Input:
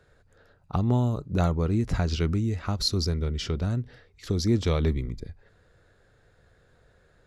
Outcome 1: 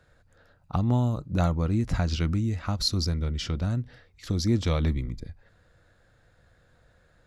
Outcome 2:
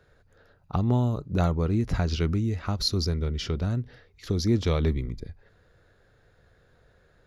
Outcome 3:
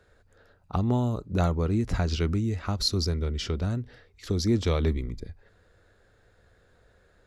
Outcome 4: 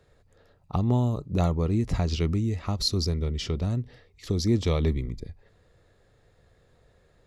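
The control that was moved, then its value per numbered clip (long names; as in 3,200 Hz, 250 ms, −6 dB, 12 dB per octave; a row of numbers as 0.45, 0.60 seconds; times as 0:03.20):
parametric band, centre frequency: 410, 8,100, 140, 1,500 Hertz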